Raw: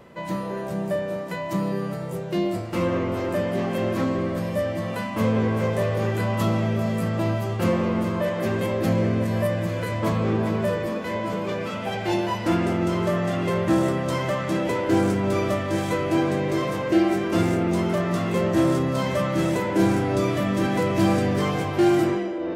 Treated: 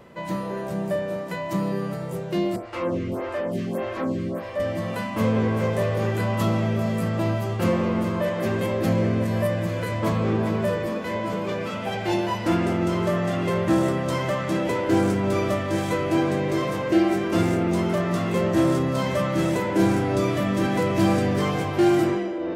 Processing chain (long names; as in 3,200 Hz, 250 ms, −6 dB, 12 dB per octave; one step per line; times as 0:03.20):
0:02.56–0:04.60: phaser with staggered stages 1.7 Hz